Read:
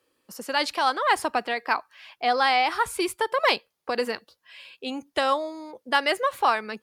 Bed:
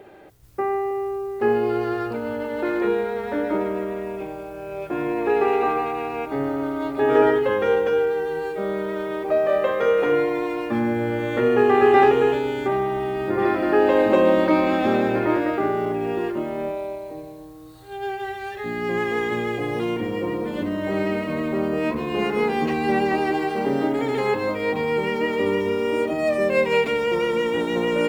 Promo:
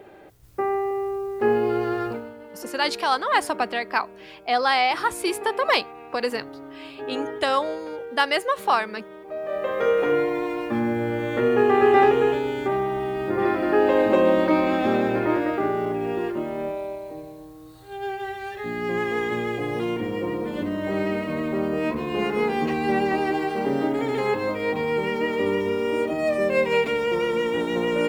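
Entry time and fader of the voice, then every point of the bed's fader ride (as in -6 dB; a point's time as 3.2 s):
2.25 s, +1.0 dB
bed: 2.11 s -0.5 dB
2.34 s -14.5 dB
9.26 s -14.5 dB
9.81 s -1.5 dB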